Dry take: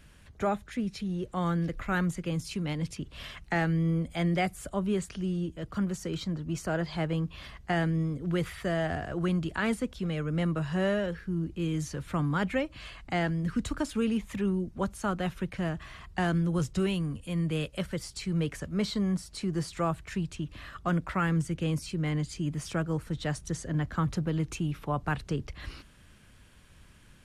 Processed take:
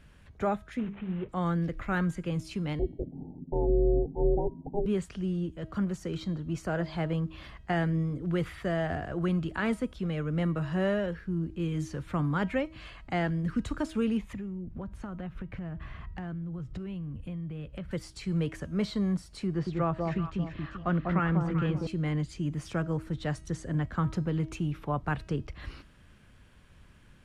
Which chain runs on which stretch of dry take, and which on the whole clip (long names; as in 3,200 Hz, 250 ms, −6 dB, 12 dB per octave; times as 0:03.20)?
0:00.79–0:01.29: variable-slope delta modulation 16 kbit/s + mains-hum notches 50/100/150/200/250/300/350/400/450 Hz
0:02.79–0:04.86: Butterworth low-pass 690 Hz 96 dB per octave + low-shelf EQ 240 Hz +9.5 dB + ring modulation 210 Hz
0:14.33–0:17.91: bass and treble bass +8 dB, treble −12 dB + downward compressor 12 to 1, threshold −34 dBFS + gain into a clipping stage and back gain 29.5 dB
0:19.47–0:21.87: low-pass filter 3,900 Hz + delay that swaps between a low-pass and a high-pass 195 ms, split 970 Hz, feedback 51%, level −2 dB
whole clip: high-shelf EQ 4,000 Hz −9.5 dB; hum removal 319.3 Hz, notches 40